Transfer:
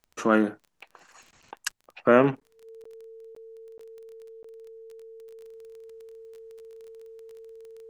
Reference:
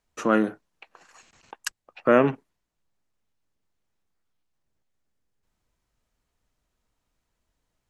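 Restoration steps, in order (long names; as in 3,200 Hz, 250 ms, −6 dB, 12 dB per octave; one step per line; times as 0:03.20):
click removal
notch filter 450 Hz, Q 30
repair the gap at 0:02.40/0:02.84/0:03.35/0:03.78/0:04.43, 14 ms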